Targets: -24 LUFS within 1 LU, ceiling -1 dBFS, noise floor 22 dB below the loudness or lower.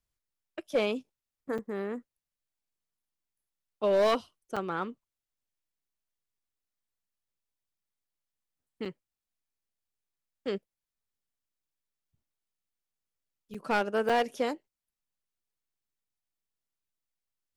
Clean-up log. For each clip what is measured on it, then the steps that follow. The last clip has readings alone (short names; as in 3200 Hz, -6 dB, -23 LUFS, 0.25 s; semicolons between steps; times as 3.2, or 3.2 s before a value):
clipped 0.3%; flat tops at -20.0 dBFS; dropouts 5; longest dropout 5.5 ms; loudness -31.5 LUFS; peak -20.0 dBFS; loudness target -24.0 LUFS
-> clip repair -20 dBFS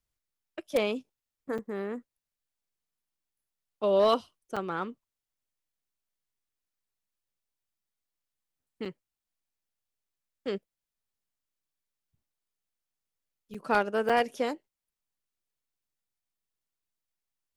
clipped 0.0%; dropouts 5; longest dropout 5.5 ms
-> interpolate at 1.58/4.56/8.85/13.54/14.09, 5.5 ms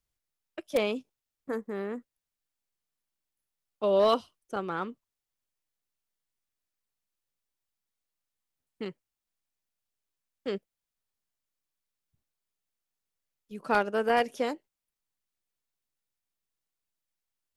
dropouts 0; loudness -30.5 LUFS; peak -11.0 dBFS; loudness target -24.0 LUFS
-> gain +6.5 dB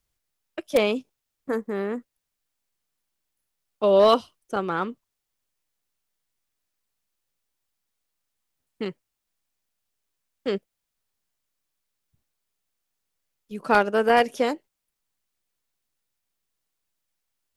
loudness -24.0 LUFS; peak -4.5 dBFS; noise floor -82 dBFS